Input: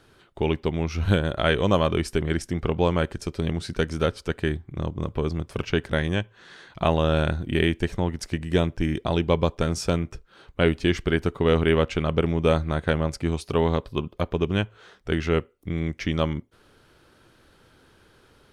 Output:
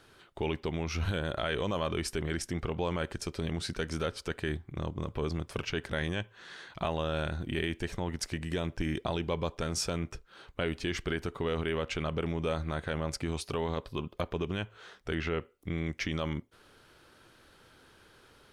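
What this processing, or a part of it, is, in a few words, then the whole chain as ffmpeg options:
stacked limiters: -filter_complex "[0:a]asettb=1/sr,asplit=3[s0][s1][s2];[s0]atrim=end=15.144[s3];[s1]atrim=start=15.14:end=15.86,asetpts=PTS-STARTPTS,afade=t=in:d=0.004:c=qsin,afade=t=out:st=0.716:d=0.004:c=qsin,acrossover=split=4000[s4][s5];[s5]acompressor=threshold=0.00158:ratio=4:attack=1:release=60[s6];[s4][s6]amix=inputs=2:normalize=0[s7];[s2]atrim=start=15.856[s8];[s3][s7]acrossfade=d=0.004:c1=hsin:c2=qsin[s9];[s9][s8]acrossfade=d=0.004:c1=qsin:c2=hsin,alimiter=limit=0.266:level=0:latency=1:release=179,alimiter=limit=0.126:level=0:latency=1:release=32,lowshelf=f=500:g=-5.5"

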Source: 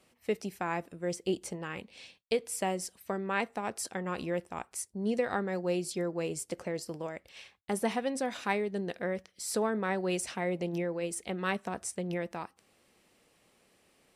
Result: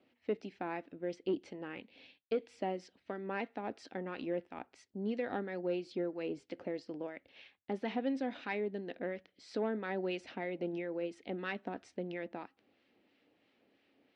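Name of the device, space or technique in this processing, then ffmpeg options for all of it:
guitar amplifier with harmonic tremolo: -filter_complex "[0:a]acrossover=split=1100[s0][s1];[s0]aeval=exprs='val(0)*(1-0.5/2+0.5/2*cos(2*PI*3*n/s))':c=same[s2];[s1]aeval=exprs='val(0)*(1-0.5/2-0.5/2*cos(2*PI*3*n/s))':c=same[s3];[s2][s3]amix=inputs=2:normalize=0,asoftclip=type=tanh:threshold=0.075,highpass=110,equalizer=f=160:t=q:w=4:g=-8,equalizer=f=280:t=q:w=4:g=10,equalizer=f=1100:t=q:w=4:g=-7,lowpass=f=3900:w=0.5412,lowpass=f=3900:w=1.3066,volume=0.75"

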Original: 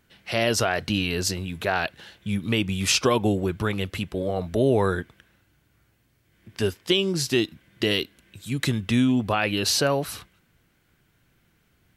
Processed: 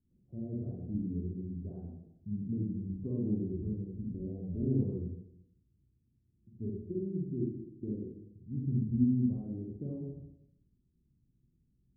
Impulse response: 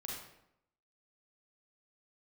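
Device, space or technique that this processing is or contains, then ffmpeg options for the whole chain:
next room: -filter_complex "[0:a]lowpass=f=300:w=0.5412,lowpass=f=300:w=1.3066[s0];[1:a]atrim=start_sample=2205[s1];[s0][s1]afir=irnorm=-1:irlink=0,volume=0.501"

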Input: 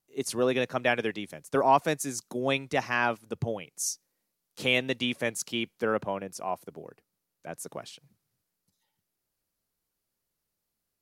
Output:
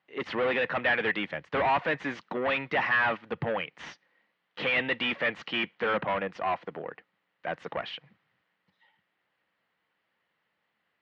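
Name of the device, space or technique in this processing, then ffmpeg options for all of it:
overdrive pedal into a guitar cabinet: -filter_complex "[0:a]asplit=2[s0][s1];[s1]highpass=f=720:p=1,volume=31.6,asoftclip=type=tanh:threshold=0.335[s2];[s0][s2]amix=inputs=2:normalize=0,lowpass=f=1100:p=1,volume=0.501,highpass=93,equalizer=f=120:t=q:w=4:g=-3,equalizer=f=260:t=q:w=4:g=-5,equalizer=f=390:t=q:w=4:g=-8,equalizer=f=630:t=q:w=4:g=-4,equalizer=f=1900:t=q:w=4:g=9,equalizer=f=3000:t=q:w=4:g=5,lowpass=f=3600:w=0.5412,lowpass=f=3600:w=1.3066,asettb=1/sr,asplit=3[s3][s4][s5];[s3]atrim=end=1.314[s6];[s4]atrim=start=1.31:end=1.77,asetpts=PTS-STARTPTS,afade=t=in:d=0.004:c=qsin,afade=t=out:st=0.456:d=0.004:c=qsin,equalizer=f=74:w=1.5:g=10[s7];[s5]atrim=start=1.766[s8];[s6][s7]acrossfade=d=0.004:c1=hsin:c2=qsin[s9];[s9][s8]acrossfade=d=0.004:c1=qsin:c2=hsin,volume=0.501"

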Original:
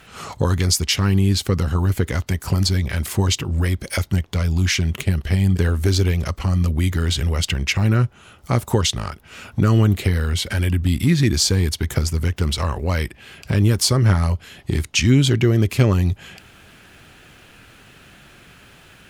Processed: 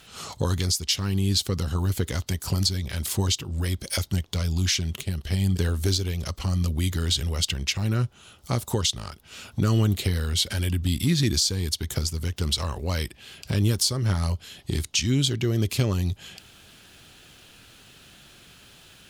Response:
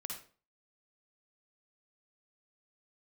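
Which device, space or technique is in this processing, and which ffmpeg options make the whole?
over-bright horn tweeter: -af "highshelf=f=2800:t=q:w=1.5:g=6.5,alimiter=limit=0.531:level=0:latency=1:release=431,volume=0.501"

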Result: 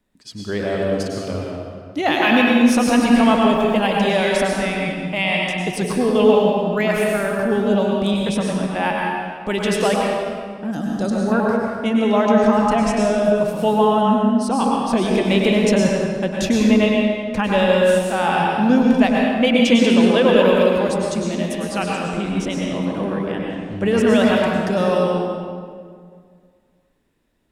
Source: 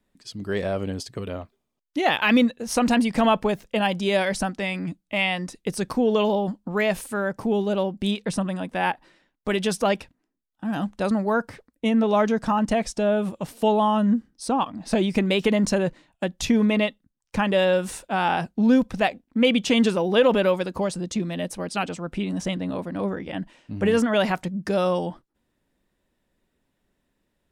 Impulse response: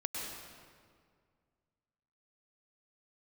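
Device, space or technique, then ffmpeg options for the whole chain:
stairwell: -filter_complex "[1:a]atrim=start_sample=2205[s0];[0:a][s0]afir=irnorm=-1:irlink=0,asettb=1/sr,asplit=3[s1][s2][s3];[s1]atrim=end=10.714[s4];[s2]atrim=start=10.71:end=11.32,asetpts=PTS-STARTPTS,afade=t=in:d=0.004:c=qsin,afade=t=out:st=0.606:d=0.004:c=qsin,equalizer=f=1000:t=o:w=0.67:g=-9,equalizer=f=2500:t=o:w=0.67:g=-11,equalizer=f=6300:t=o:w=0.67:g=10[s5];[s3]atrim=start=11.316[s6];[s4][s5]acrossfade=d=0.004:c1=hsin:c2=qsin[s7];[s7][s6]acrossfade=d=0.004:c1=qsin:c2=hsin,volume=1.41"

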